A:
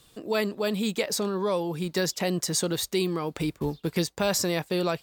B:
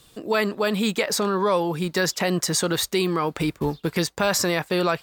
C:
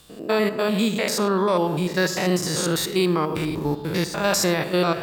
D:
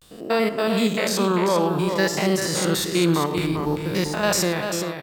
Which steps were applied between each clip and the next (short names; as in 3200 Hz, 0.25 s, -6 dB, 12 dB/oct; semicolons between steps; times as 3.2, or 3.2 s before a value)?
dynamic EQ 1400 Hz, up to +8 dB, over -43 dBFS, Q 0.8; in parallel at +2 dB: limiter -17.5 dBFS, peak gain reduction 10 dB; on the sum: gain -3 dB
stepped spectrum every 0.1 s; on a send at -12.5 dB: reverb RT60 1.6 s, pre-delay 15 ms; on the sum: gain +3 dB
ending faded out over 0.66 s; vibrato 0.56 Hz 89 cents; echo 0.393 s -7 dB